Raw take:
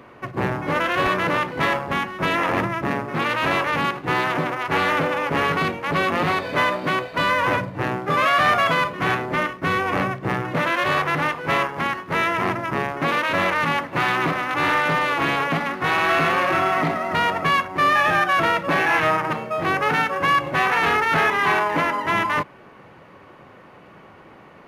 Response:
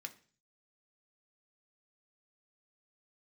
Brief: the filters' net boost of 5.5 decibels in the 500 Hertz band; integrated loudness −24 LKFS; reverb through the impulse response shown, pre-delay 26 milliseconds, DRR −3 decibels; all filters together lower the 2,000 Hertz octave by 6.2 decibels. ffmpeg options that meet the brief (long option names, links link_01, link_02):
-filter_complex "[0:a]equalizer=frequency=500:width_type=o:gain=7.5,equalizer=frequency=2000:width_type=o:gain=-8.5,asplit=2[link_01][link_02];[1:a]atrim=start_sample=2205,adelay=26[link_03];[link_02][link_03]afir=irnorm=-1:irlink=0,volume=6dB[link_04];[link_01][link_04]amix=inputs=2:normalize=0,volume=-6dB"